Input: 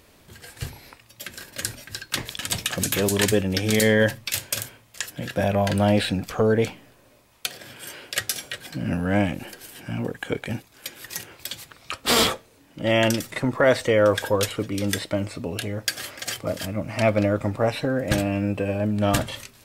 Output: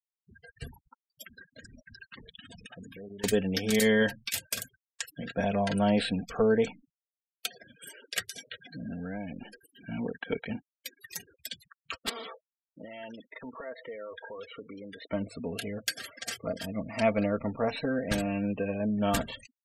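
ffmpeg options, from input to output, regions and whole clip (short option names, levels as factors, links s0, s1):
-filter_complex "[0:a]asettb=1/sr,asplit=3[s0][s1][s2];[s0]atrim=end=1.264[s3];[s1]atrim=start=1.26:end=3.24,asetpts=PTS-STARTPTS,afade=t=in:d=0.004:c=qsin,afade=t=out:st=1.976:d=0.004:c=qsin,highshelf=f=4800:g=-10,acompressor=threshold=0.0178:ratio=8:attack=3.2:release=140:knee=1:detection=peak[s4];[s2]atrim=start=3.236[s5];[s3][s4]acrossfade=d=0.004:c1=hsin:c2=qsin[s6];[s6][s5]acrossfade=d=0.004:c1=qsin:c2=hsin,asettb=1/sr,asplit=3[s7][s8][s9];[s7]atrim=end=8.224[s10];[s8]atrim=start=8.22:end=9.51,asetpts=PTS-STARTPTS,afade=t=in:d=0.004:c=qsin,afade=t=out:st=1.286:d=0.004:c=qsin,lowpass=12000,highshelf=f=3400:g=-2.5,acompressor=threshold=0.0355:ratio=4:attack=3.2:release=140:knee=1:detection=peak[s11];[s9]atrim=start=9.506[s12];[s10][s11]acrossfade=d=0.004:c1=hsin:c2=qsin[s13];[s13][s12]acrossfade=d=0.004:c1=qsin:c2=hsin,asettb=1/sr,asplit=3[s14][s15][s16];[s14]atrim=end=12.094[s17];[s15]atrim=start=12.09:end=15.1,asetpts=PTS-STARTPTS,afade=t=in:d=0.004:c=qsin,afade=t=out:st=3.006:d=0.004:c=qsin,bass=f=250:g=-11,treble=f=4000:g=-9,acompressor=threshold=0.02:ratio=4:attack=3.2:release=140:knee=1:detection=peak,asoftclip=type=hard:threshold=0.0398[s18];[s16]atrim=start=15.096[s19];[s17][s18]acrossfade=d=0.004:c1=hsin:c2=qsin[s20];[s20][s19]acrossfade=d=0.004:c1=qsin:c2=hsin,afftfilt=real='re*gte(hypot(re,im),0.02)':imag='im*gte(hypot(re,im),0.02)':win_size=1024:overlap=0.75,aecho=1:1:4.4:0.55,volume=0.447"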